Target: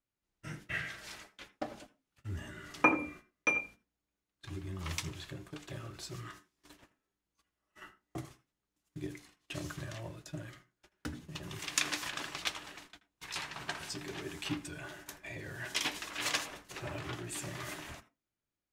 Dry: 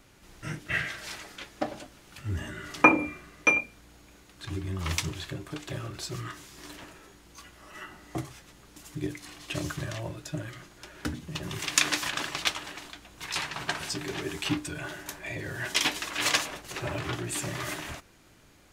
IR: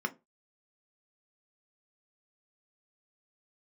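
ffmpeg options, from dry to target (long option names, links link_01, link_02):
-filter_complex "[0:a]agate=range=-27dB:threshold=-43dB:ratio=16:detection=peak,asplit=2[link_01][link_02];[1:a]atrim=start_sample=2205,adelay=80[link_03];[link_02][link_03]afir=irnorm=-1:irlink=0,volume=-20.5dB[link_04];[link_01][link_04]amix=inputs=2:normalize=0,volume=-8dB"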